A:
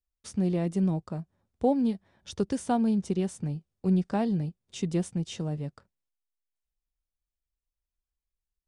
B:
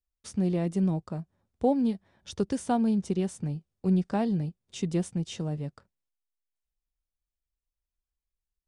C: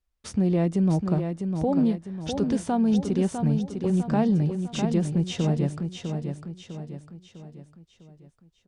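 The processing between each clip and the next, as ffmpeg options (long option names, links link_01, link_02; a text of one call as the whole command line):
ffmpeg -i in.wav -af anull out.wav
ffmpeg -i in.wav -af "aemphasis=mode=reproduction:type=cd,alimiter=level_in=1.5dB:limit=-24dB:level=0:latency=1:release=136,volume=-1.5dB,aecho=1:1:652|1304|1956|2608|3260:0.473|0.218|0.1|0.0461|0.0212,volume=9dB" out.wav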